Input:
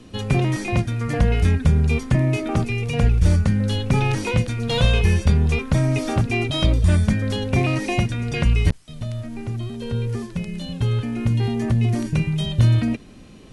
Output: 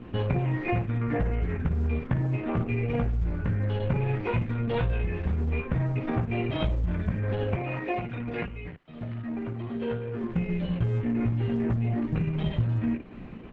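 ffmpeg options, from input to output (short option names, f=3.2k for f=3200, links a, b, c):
-filter_complex "[0:a]lowpass=f=2.4k:w=0.5412,lowpass=f=2.4k:w=1.3066,bandreject=f=570:w=15,aecho=1:1:17|55:0.708|0.473,acompressor=threshold=-24dB:ratio=12,asettb=1/sr,asplit=3[a][b][c];[a]atrim=end=7.564[d];[b]atrim=start=7.56:end=10.24,asetpts=PTS-STARTPTS,afade=t=in:d=0.004:c=qsin,afade=t=out:st=2.676:d=0.004:c=qsin,highpass=f=260:p=1[e];[c]atrim=start=10.236[f];[d][e]acrossfade=d=0.004:c1=hsin:c2=qsin[g];[g][f]acrossfade=d=0.004:c1=qsin:c2=hsin,volume=1dB" -ar 48000 -c:a libopus -b:a 10k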